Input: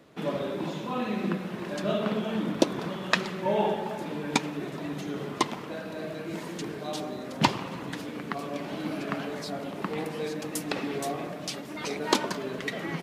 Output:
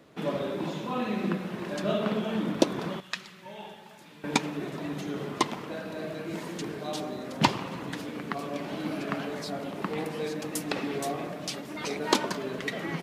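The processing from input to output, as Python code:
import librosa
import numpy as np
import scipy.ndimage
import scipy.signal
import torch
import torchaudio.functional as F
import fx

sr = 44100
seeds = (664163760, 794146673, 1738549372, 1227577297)

y = fx.tone_stack(x, sr, knobs='5-5-5', at=(3.0, 4.24))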